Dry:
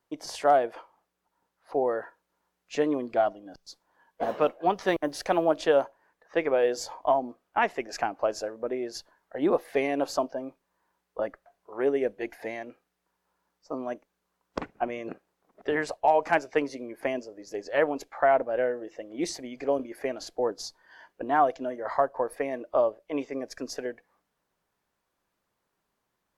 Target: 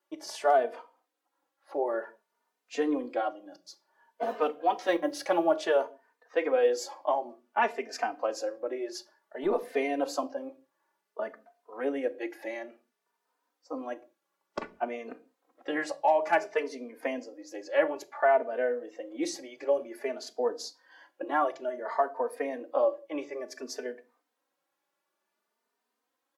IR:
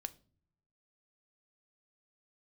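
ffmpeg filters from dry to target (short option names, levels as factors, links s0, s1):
-filter_complex "[0:a]acrossover=split=220[s0][s1];[s0]acrusher=bits=4:mix=0:aa=0.5[s2];[s2][s1]amix=inputs=2:normalize=0[s3];[1:a]atrim=start_sample=2205,afade=t=out:st=0.25:d=0.01,atrim=end_sample=11466[s4];[s3][s4]afir=irnorm=-1:irlink=0,asplit=2[s5][s6];[s6]adelay=3.1,afreqshift=0.56[s7];[s5][s7]amix=inputs=2:normalize=1,volume=1.58"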